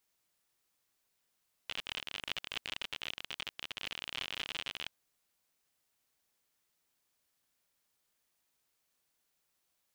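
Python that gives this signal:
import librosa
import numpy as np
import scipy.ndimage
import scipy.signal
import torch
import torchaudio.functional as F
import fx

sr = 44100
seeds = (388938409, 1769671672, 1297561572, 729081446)

y = fx.geiger_clicks(sr, seeds[0], length_s=3.21, per_s=58.0, level_db=-22.5)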